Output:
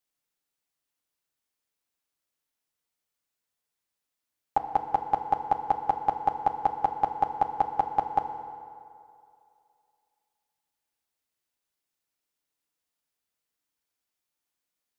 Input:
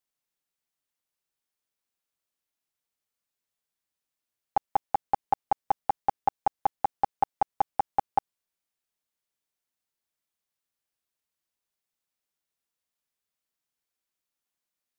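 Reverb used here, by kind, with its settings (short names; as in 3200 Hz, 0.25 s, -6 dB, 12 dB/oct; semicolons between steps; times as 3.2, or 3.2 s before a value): FDN reverb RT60 2.5 s, low-frequency decay 0.8×, high-frequency decay 0.65×, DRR 6 dB; gain +1 dB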